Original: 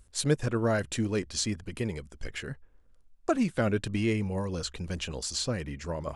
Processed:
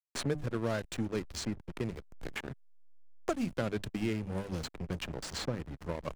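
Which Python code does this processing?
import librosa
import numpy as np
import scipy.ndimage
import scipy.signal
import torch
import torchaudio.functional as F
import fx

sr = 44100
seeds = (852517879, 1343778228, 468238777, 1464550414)

y = fx.hum_notches(x, sr, base_hz=50, count=6)
y = fx.backlash(y, sr, play_db=-29.5)
y = fx.band_squash(y, sr, depth_pct=70)
y = y * 10.0 ** (-4.0 / 20.0)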